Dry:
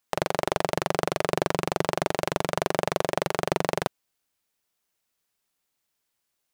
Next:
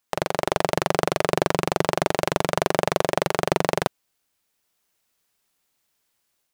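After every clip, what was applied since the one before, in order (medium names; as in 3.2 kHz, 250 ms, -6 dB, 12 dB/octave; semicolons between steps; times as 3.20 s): level rider gain up to 5 dB; trim +1 dB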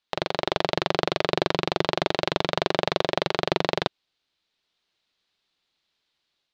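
resonant low-pass 3.9 kHz, resonance Q 3; peaking EQ 350 Hz +3 dB 0.37 oct; trim -3.5 dB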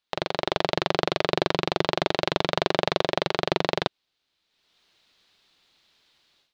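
level rider gain up to 13 dB; trim -1 dB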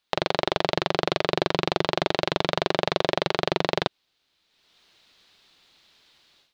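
peak limiter -8 dBFS, peak gain reduction 6.5 dB; trim +5 dB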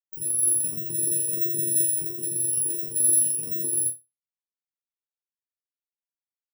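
bit-reversed sample order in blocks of 64 samples; chord resonator D#2 fifth, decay 0.54 s; spectral contrast expander 2.5:1; trim +8 dB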